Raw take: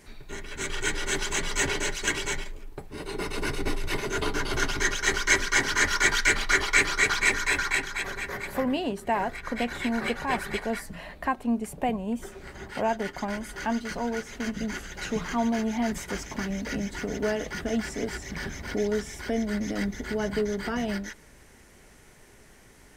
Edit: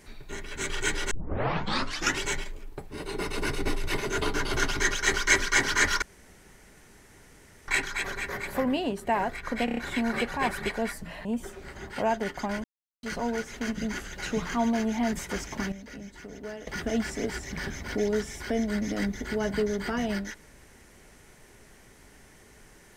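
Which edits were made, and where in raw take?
1.11 tape start 1.10 s
6.02–7.68 room tone
9.65 stutter 0.03 s, 5 plays
11.13–12.04 cut
13.43–13.82 mute
16.51–17.46 gain -11.5 dB

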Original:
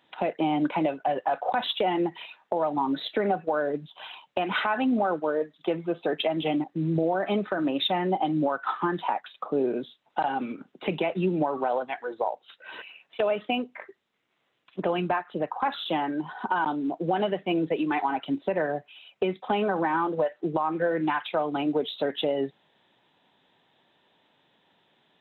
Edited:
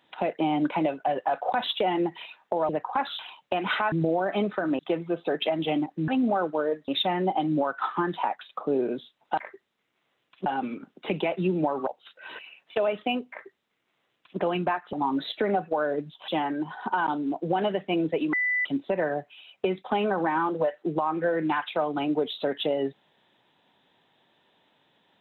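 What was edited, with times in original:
2.69–4.04 swap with 15.36–15.86
4.77–5.57 swap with 6.86–7.73
11.65–12.3 cut
13.74–14.81 copy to 10.24
17.91–18.23 bleep 1990 Hz -22.5 dBFS

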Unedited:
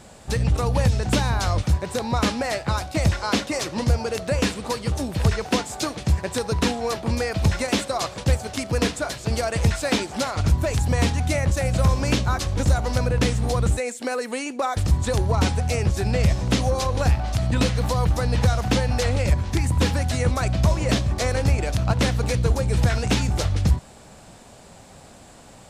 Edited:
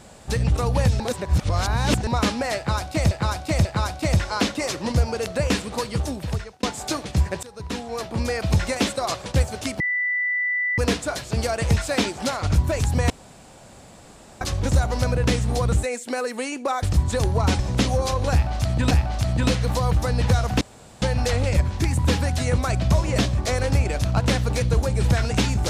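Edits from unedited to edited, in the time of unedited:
1–2.07 reverse
2.57–3.11 loop, 3 plays
4.92–5.55 fade out
6.35–7.28 fade in, from -20.5 dB
8.72 add tone 1980 Hz -20.5 dBFS 0.98 s
11.04–12.35 room tone
15.53–16.32 cut
17.05–17.64 loop, 2 plays
18.75 insert room tone 0.41 s

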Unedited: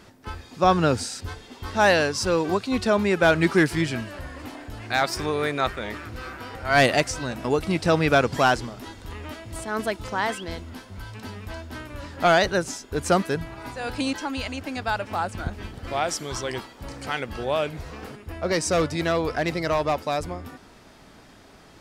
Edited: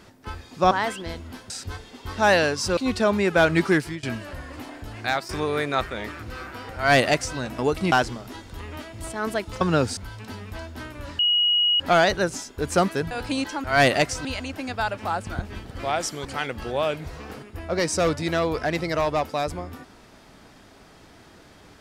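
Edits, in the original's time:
0.71–1.07 swap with 10.13–10.92
2.34–2.63 cut
3.43–3.89 fade out equal-power, to -22.5 dB
4.84–5.15 fade out equal-power, to -13.5 dB
6.62–7.23 copy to 14.33
7.78–8.44 cut
12.14 add tone 2900 Hz -17 dBFS 0.61 s
13.45–13.8 cut
16.33–16.98 cut

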